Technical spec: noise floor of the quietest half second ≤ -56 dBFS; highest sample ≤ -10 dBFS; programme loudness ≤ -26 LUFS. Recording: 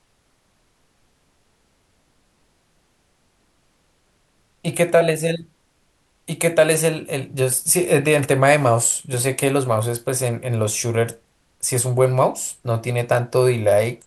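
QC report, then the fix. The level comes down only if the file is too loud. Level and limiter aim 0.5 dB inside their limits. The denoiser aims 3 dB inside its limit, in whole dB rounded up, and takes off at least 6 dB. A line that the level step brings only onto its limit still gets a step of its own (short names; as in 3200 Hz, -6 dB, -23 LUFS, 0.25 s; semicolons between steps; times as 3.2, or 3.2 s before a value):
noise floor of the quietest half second -63 dBFS: OK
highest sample -2.0 dBFS: fail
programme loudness -19.5 LUFS: fail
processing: gain -7 dB; limiter -10.5 dBFS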